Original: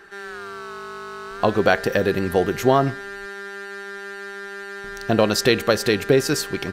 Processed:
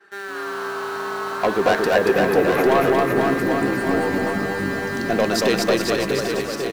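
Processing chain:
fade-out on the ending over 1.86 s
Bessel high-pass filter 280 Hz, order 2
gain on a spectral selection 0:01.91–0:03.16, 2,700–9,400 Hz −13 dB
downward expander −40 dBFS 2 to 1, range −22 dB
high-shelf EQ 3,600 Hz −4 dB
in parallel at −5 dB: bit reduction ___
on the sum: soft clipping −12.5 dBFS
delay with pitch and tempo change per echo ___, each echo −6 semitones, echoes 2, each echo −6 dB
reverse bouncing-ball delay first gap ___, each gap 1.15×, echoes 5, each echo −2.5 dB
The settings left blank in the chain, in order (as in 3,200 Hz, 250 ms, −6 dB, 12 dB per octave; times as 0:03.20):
7 bits, 115 ms, 230 ms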